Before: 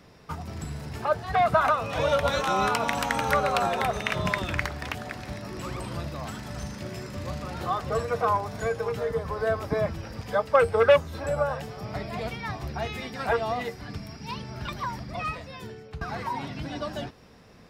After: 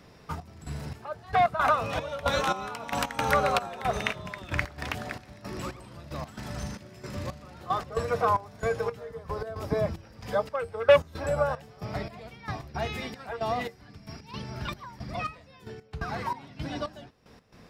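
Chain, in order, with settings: 9.29–10.46 dynamic EQ 1700 Hz, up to -5 dB, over -39 dBFS, Q 0.78; step gate "xxx..xx...x." 113 bpm -12 dB

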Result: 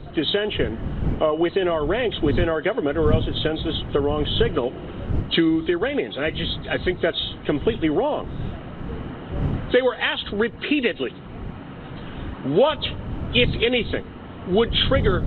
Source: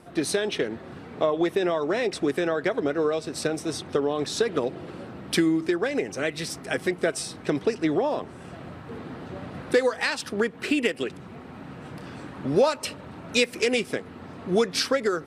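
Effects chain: nonlinear frequency compression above 2800 Hz 4:1; wind noise 140 Hz -32 dBFS; gain +3 dB

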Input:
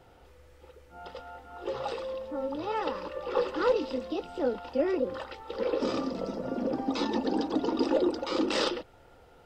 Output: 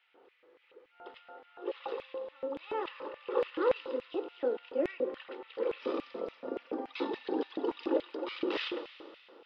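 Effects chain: speaker cabinet 120–3600 Hz, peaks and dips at 160 Hz -7 dB, 650 Hz -4 dB, 1100 Hz +3 dB; Schroeder reverb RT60 2.5 s, combs from 31 ms, DRR 10 dB; LFO high-pass square 3.5 Hz 370–2300 Hz; gain -6.5 dB

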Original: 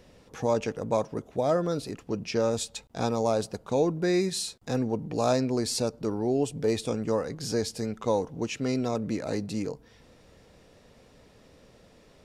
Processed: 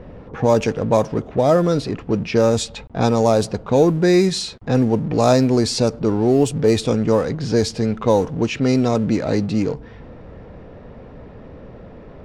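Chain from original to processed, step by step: G.711 law mismatch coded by mu; low-pass opened by the level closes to 1300 Hz, open at -20.5 dBFS; low shelf 230 Hz +4.5 dB; gain +8.5 dB

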